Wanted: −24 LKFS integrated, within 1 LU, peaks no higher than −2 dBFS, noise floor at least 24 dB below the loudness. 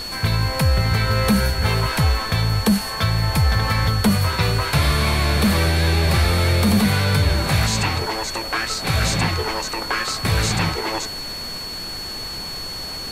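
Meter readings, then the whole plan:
interfering tone 4,400 Hz; level of the tone −29 dBFS; background noise floor −30 dBFS; target noise floor −44 dBFS; integrated loudness −20.0 LKFS; sample peak −7.5 dBFS; target loudness −24.0 LKFS
→ notch filter 4,400 Hz, Q 30
noise reduction from a noise print 14 dB
level −4 dB

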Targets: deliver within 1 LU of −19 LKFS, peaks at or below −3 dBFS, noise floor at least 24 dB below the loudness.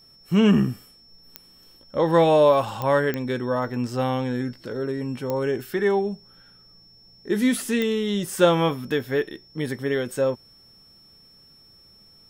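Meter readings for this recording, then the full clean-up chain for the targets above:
number of clicks 5; interfering tone 5,400 Hz; level of the tone −51 dBFS; integrated loudness −23.0 LKFS; sample peak −4.5 dBFS; target loudness −19.0 LKFS
→ click removal
notch filter 5,400 Hz, Q 30
level +4 dB
brickwall limiter −3 dBFS

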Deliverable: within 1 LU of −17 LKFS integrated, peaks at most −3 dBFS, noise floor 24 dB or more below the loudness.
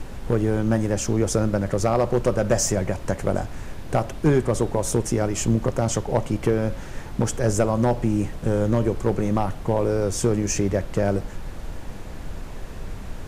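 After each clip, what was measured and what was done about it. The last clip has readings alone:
share of clipped samples 0.4%; peaks flattened at −10.5 dBFS; background noise floor −36 dBFS; target noise floor −48 dBFS; integrated loudness −23.5 LKFS; sample peak −10.5 dBFS; target loudness −17.0 LKFS
→ clipped peaks rebuilt −10.5 dBFS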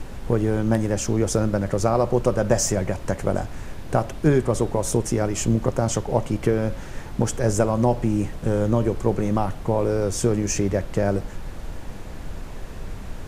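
share of clipped samples 0.0%; background noise floor −36 dBFS; target noise floor −47 dBFS
→ noise reduction from a noise print 11 dB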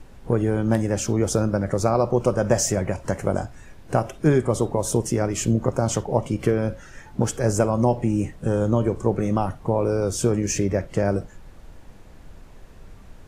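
background noise floor −46 dBFS; target noise floor −47 dBFS
→ noise reduction from a noise print 6 dB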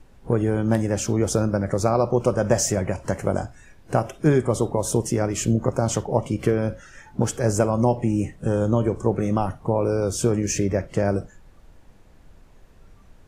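background noise floor −51 dBFS; integrated loudness −23.0 LKFS; sample peak −4.5 dBFS; target loudness −17.0 LKFS
→ level +6 dB
brickwall limiter −3 dBFS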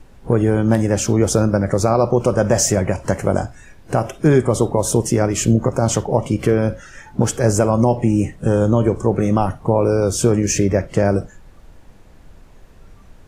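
integrated loudness −17.5 LKFS; sample peak −3.0 dBFS; background noise floor −45 dBFS

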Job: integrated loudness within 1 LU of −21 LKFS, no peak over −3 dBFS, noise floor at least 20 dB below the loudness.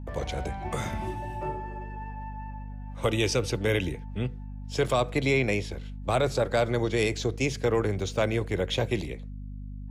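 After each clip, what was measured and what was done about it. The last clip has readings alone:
mains hum 50 Hz; hum harmonics up to 250 Hz; level of the hum −36 dBFS; integrated loudness −28.5 LKFS; sample peak −14.5 dBFS; target loudness −21.0 LKFS
→ mains-hum notches 50/100/150/200/250 Hz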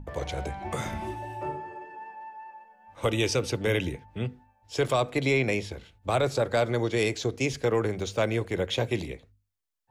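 mains hum none found; integrated loudness −28.5 LKFS; sample peak −14.0 dBFS; target loudness −21.0 LKFS
→ level +7.5 dB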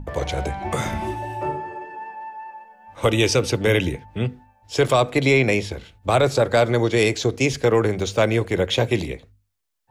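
integrated loudness −21.0 LKFS; sample peak −6.5 dBFS; background noise floor −64 dBFS

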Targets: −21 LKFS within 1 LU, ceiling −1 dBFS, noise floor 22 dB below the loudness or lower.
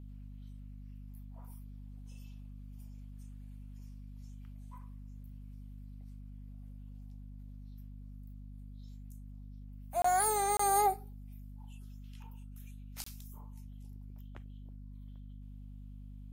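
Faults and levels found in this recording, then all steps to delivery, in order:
number of dropouts 3; longest dropout 24 ms; mains hum 50 Hz; hum harmonics up to 250 Hz; level of the hum −45 dBFS; integrated loudness −31.5 LKFS; sample peak −17.5 dBFS; target loudness −21.0 LKFS
→ repair the gap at 0:10.02/0:10.57/0:13.04, 24 ms
hum removal 50 Hz, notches 5
level +10.5 dB

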